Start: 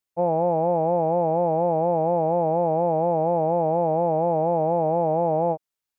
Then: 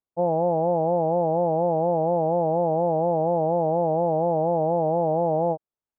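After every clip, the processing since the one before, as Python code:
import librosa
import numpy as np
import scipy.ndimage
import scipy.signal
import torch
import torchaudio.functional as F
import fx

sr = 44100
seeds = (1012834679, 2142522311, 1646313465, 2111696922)

y = scipy.signal.sosfilt(scipy.signal.butter(2, 1000.0, 'lowpass', fs=sr, output='sos'), x)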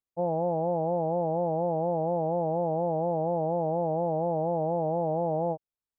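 y = fx.low_shelf(x, sr, hz=120.0, db=6.5)
y = y * 10.0 ** (-6.0 / 20.0)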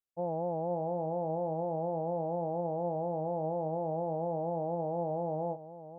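y = x + 10.0 ** (-13.5 / 20.0) * np.pad(x, (int(522 * sr / 1000.0), 0))[:len(x)]
y = y * 10.0 ** (-6.0 / 20.0)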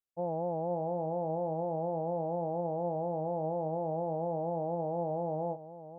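y = x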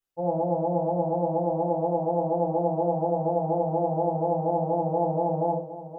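y = fx.room_shoebox(x, sr, seeds[0], volume_m3=230.0, walls='furnished', distance_m=4.1)
y = y * 10.0 ** (-1.0 / 20.0)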